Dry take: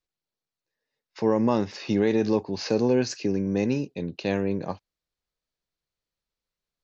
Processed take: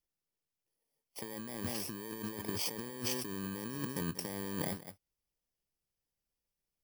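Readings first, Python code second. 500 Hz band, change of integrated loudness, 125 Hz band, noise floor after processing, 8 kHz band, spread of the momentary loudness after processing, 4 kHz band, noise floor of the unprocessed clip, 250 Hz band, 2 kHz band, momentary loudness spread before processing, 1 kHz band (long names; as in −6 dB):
−19.0 dB, −13.0 dB, −12.0 dB, below −85 dBFS, can't be measured, 8 LU, −4.5 dB, below −85 dBFS, −16.0 dB, −9.0 dB, 9 LU, −13.0 dB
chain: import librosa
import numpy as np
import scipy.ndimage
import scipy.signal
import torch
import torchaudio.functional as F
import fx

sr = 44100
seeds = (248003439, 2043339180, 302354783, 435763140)

y = fx.bit_reversed(x, sr, seeds[0], block=32)
y = y + 10.0 ** (-16.5 / 20.0) * np.pad(y, (int(187 * sr / 1000.0), 0))[:len(y)]
y = fx.over_compress(y, sr, threshold_db=-32.0, ratio=-1.0)
y = F.gain(torch.from_numpy(y), -8.0).numpy()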